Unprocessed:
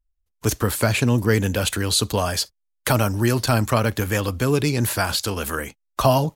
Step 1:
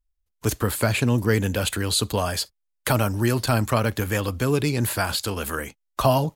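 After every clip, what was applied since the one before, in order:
dynamic equaliser 5,800 Hz, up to −6 dB, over −45 dBFS, Q 4.7
level −2 dB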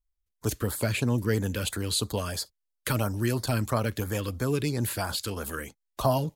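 auto-filter notch sine 3 Hz 700–2,900 Hz
level −5 dB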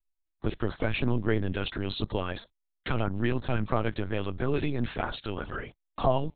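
linear-prediction vocoder at 8 kHz pitch kept

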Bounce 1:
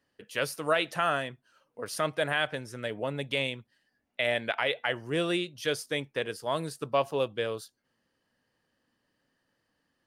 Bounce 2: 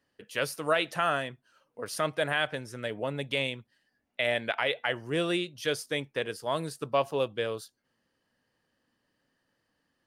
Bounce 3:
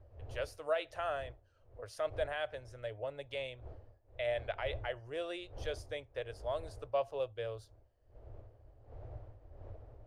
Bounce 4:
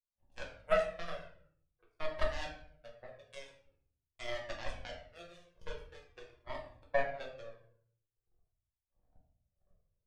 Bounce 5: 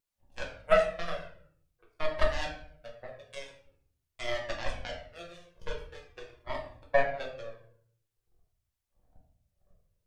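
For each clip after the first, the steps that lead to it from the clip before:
no processing that can be heard
wind on the microphone 320 Hz −45 dBFS; drawn EQ curve 110 Hz 0 dB, 170 Hz −30 dB, 610 Hz −2 dB, 940 Hz −11 dB, 6,600 Hz −13 dB, 12,000 Hz −20 dB; level −1.5 dB
power curve on the samples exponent 3; rectangular room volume 95 cubic metres, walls mixed, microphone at 0.99 metres; flanger whose copies keep moving one way falling 0.46 Hz; level +10 dB
pitch vibrato 0.35 Hz 6 cents; level +6.5 dB

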